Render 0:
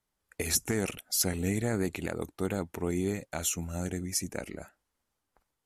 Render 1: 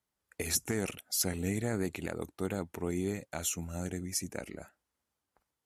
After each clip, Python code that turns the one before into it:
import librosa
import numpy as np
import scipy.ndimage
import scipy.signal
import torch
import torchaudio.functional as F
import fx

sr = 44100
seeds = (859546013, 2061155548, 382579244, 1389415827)

y = scipy.signal.sosfilt(scipy.signal.butter(2, 51.0, 'highpass', fs=sr, output='sos'), x)
y = F.gain(torch.from_numpy(y), -3.0).numpy()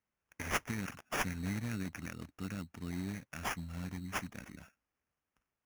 y = fx.band_shelf(x, sr, hz=570.0, db=-14.5, octaves=1.7)
y = fx.sample_hold(y, sr, seeds[0], rate_hz=4100.0, jitter_pct=0)
y = F.gain(torch.from_numpy(y), -3.0).numpy()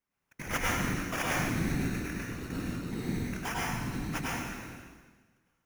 y = fx.whisperise(x, sr, seeds[1])
y = fx.rev_plate(y, sr, seeds[2], rt60_s=1.4, hf_ratio=0.95, predelay_ms=85, drr_db=-5.5)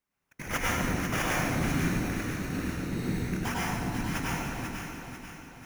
y = fx.echo_alternate(x, sr, ms=246, hz=960.0, feedback_pct=70, wet_db=-3.0)
y = F.gain(torch.from_numpy(y), 1.0).numpy()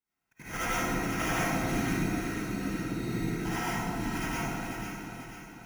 y = fx.notch_comb(x, sr, f0_hz=580.0)
y = fx.rev_freeverb(y, sr, rt60_s=0.48, hf_ratio=0.35, predelay_ms=30, drr_db=-7.5)
y = F.gain(torch.from_numpy(y), -7.5).numpy()